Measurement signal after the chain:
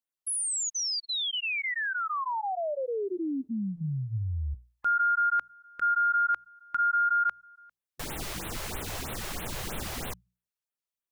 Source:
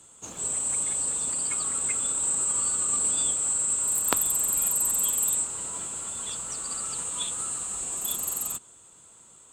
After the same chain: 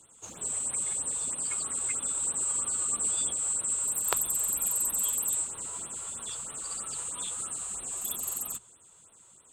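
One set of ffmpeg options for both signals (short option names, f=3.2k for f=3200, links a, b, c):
-af "bandreject=f=60:t=h:w=6,bandreject=f=120:t=h:w=6,bandreject=f=180:t=h:w=6,afftfilt=real='re*(1-between(b*sr/1024,200*pow(6100/200,0.5+0.5*sin(2*PI*3.1*pts/sr))/1.41,200*pow(6100/200,0.5+0.5*sin(2*PI*3.1*pts/sr))*1.41))':imag='im*(1-between(b*sr/1024,200*pow(6100/200,0.5+0.5*sin(2*PI*3.1*pts/sr))/1.41,200*pow(6100/200,0.5+0.5*sin(2*PI*3.1*pts/sr))*1.41))':win_size=1024:overlap=0.75,volume=-3.5dB"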